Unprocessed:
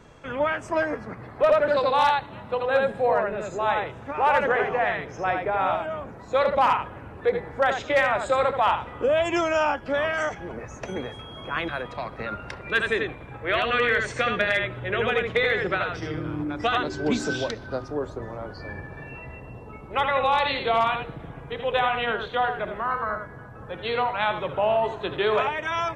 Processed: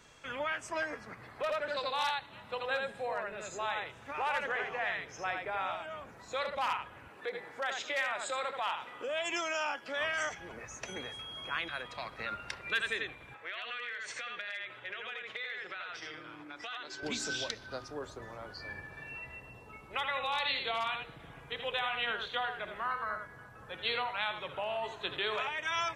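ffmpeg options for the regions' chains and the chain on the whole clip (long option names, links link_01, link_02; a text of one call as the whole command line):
ffmpeg -i in.wav -filter_complex "[0:a]asettb=1/sr,asplit=3[link_01][link_02][link_03];[link_01]atrim=end=7.084[link_04];[link_02]atrim=start=7.08:end=10.01,asetpts=PTS-STARTPTS,afade=type=in:duration=0.004:curve=qsin,afade=type=out:start_time=2.926:duration=0.004:curve=qsin,highpass=210,acompressor=threshold=-29dB:ratio=1.5:attack=3.2:release=140:knee=1:detection=peak[link_05];[link_03]atrim=start=10.006[link_06];[link_04][link_05]acrossfade=duration=0.004:curve1=hsin:curve2=qsin[link_07];[link_07][link_06]acrossfade=duration=0.004:curve1=qsin:curve2=hsin,asettb=1/sr,asplit=3[link_08][link_09][link_10];[link_08]atrim=end=13.344[link_11];[link_09]atrim=start=13.34:end=17.03,asetpts=PTS-STARTPTS,afade=type=in:duration=0.004:curve=qsin,afade=type=out:start_time=3.686:duration=0.004:curve=qsin,highpass=frequency=720:poles=1,highshelf=frequency=5600:gain=-10.5,acompressor=threshold=-32dB:ratio=10:attack=3.2:release=140:knee=1:detection=peak[link_12];[link_10]atrim=start=17.026[link_13];[link_11][link_12]acrossfade=duration=0.004:curve1=hsin:curve2=qsin[link_14];[link_14][link_13]acrossfade=duration=0.004:curve1=qsin:curve2=hsin,alimiter=limit=-17.5dB:level=0:latency=1:release=461,tiltshelf=frequency=1400:gain=-8.5,volume=-5.5dB" out.wav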